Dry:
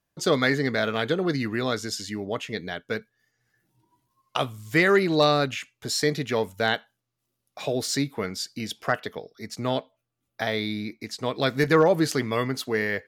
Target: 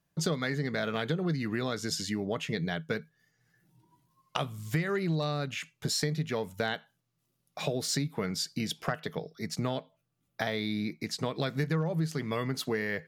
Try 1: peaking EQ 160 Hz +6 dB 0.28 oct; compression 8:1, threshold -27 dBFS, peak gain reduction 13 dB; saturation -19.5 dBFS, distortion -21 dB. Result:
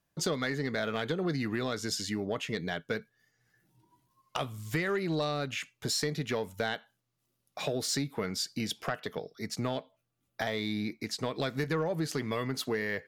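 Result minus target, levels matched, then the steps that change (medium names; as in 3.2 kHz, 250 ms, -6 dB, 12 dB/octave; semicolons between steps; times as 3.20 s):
saturation: distortion +17 dB; 125 Hz band -3.5 dB
change: peaking EQ 160 Hz +17 dB 0.28 oct; change: saturation -9.5 dBFS, distortion -38 dB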